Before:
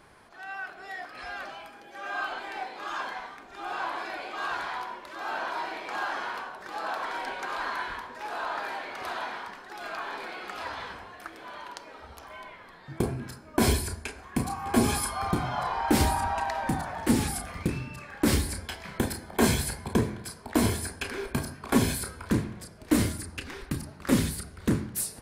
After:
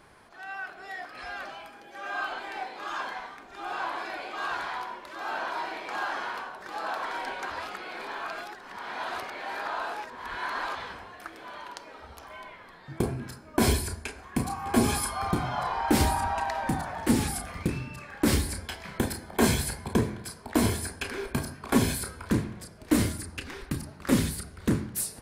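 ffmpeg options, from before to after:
-filter_complex "[0:a]asplit=3[a][b][c];[a]atrim=end=7.502[d];[b]atrim=start=7.498:end=10.752,asetpts=PTS-STARTPTS,areverse[e];[c]atrim=start=10.748[f];[d][e]acrossfade=d=0.004:c1=hsin:c2=hsin[g];[g][f]acrossfade=d=0.004:c1=hsin:c2=hsin"

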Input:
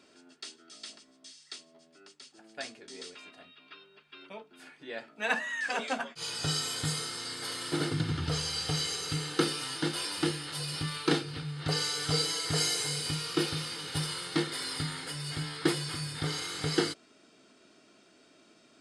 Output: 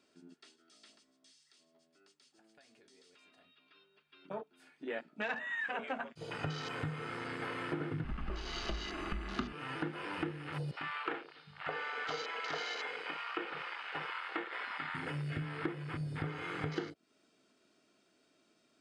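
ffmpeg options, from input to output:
-filter_complex "[0:a]asplit=3[a][b][c];[a]afade=t=out:st=1.41:d=0.02[d];[b]acompressor=threshold=-49dB:ratio=6:attack=3.2:release=140:knee=1:detection=peak,afade=t=in:st=1.41:d=0.02,afade=t=out:st=3.74:d=0.02[e];[c]afade=t=in:st=3.74:d=0.02[f];[d][e][f]amix=inputs=3:normalize=0,asettb=1/sr,asplit=3[g][h][i];[g]atrim=end=8.044[j];[h]atrim=start=8.04:end=9.53,asetpts=PTS-STARTPTS,afade=t=in:d=0.004:c=qsin,afade=t=out:st=1.486:d=0.004:c=qsin,afreqshift=-100[k];[i]atrim=start=9.526[l];[j][k]acrossfade=d=0.004:c1=hsin:c2=qsin[m];[m][l]acrossfade=d=0.004:c1=qsin:c2=hsin,asettb=1/sr,asplit=3[n][o][p];[n]atrim=end=10.714[q];[o]atrim=start=10.71:end=14.95,asetpts=PTS-STARTPTS,afade=t=in:d=0.004:c=qsin,afade=t=out:st=4.236:d=0.004:c=qsin,highpass=590,lowpass=4k[r];[p]atrim=start=14.946[s];[q][r]acrossfade=d=0.004:c1=hsin:c2=qsin[t];[t][s]acrossfade=d=0.004:c1=qsin:c2=hsin,acrossover=split=3000[u][v];[v]acompressor=threshold=-50dB:ratio=4:attack=1:release=60[w];[u][w]amix=inputs=2:normalize=0,afwtdn=0.00794,acompressor=threshold=-41dB:ratio=6,volume=5.5dB"

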